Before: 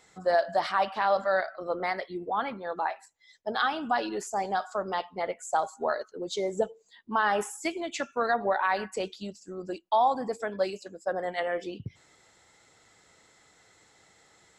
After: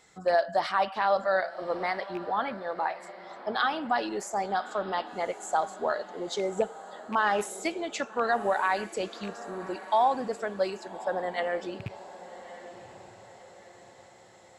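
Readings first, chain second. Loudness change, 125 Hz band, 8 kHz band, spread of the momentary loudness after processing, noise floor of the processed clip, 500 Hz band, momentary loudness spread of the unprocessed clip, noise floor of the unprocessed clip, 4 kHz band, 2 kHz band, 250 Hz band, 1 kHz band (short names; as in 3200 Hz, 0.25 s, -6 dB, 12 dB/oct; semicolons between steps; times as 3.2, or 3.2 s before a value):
0.0 dB, 0.0 dB, 0.0 dB, 16 LU, -54 dBFS, 0.0 dB, 9 LU, -62 dBFS, 0.0 dB, 0.0 dB, 0.0 dB, 0.0 dB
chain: rattling part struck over -37 dBFS, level -30 dBFS; diffused feedback echo 1.161 s, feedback 46%, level -15 dB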